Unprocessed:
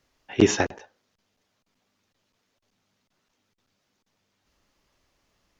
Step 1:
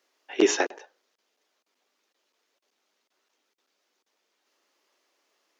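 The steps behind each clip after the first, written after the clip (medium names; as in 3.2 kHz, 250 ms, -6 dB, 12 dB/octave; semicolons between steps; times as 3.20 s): Chebyshev high-pass 350 Hz, order 3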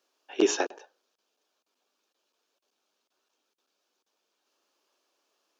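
peaking EQ 2 kHz -13 dB 0.22 oct; trim -2.5 dB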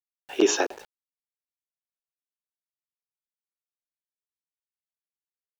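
in parallel at -1 dB: peak limiter -21 dBFS, peak gain reduction 10.5 dB; on the sum: small samples zeroed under -44.5 dBFS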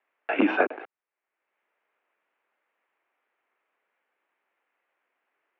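mistuned SSB -100 Hz 470–2500 Hz; three bands compressed up and down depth 70%; trim +6.5 dB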